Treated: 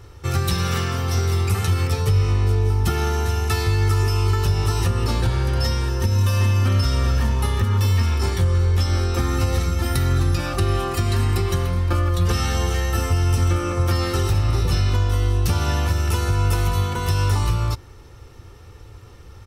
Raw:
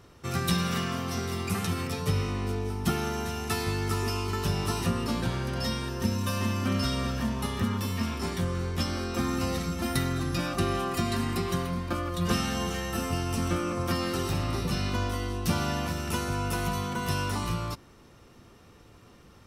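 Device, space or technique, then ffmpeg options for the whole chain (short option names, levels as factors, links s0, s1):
car stereo with a boomy subwoofer: -af "lowshelf=f=130:t=q:w=1.5:g=7.5,aecho=1:1:2.3:0.4,alimiter=limit=0.158:level=0:latency=1:release=128,volume=1.88"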